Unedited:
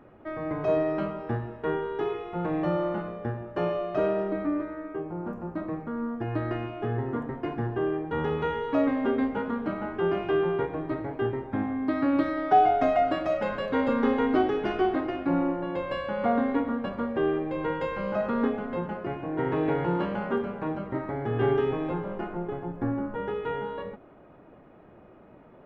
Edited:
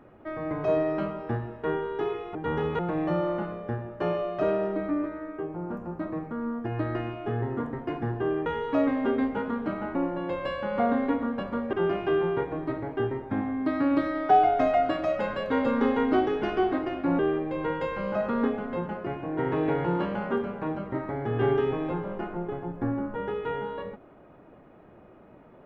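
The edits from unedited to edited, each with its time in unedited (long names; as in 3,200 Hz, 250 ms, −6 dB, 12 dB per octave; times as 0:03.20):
0:08.02–0:08.46: move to 0:02.35
0:15.41–0:17.19: move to 0:09.95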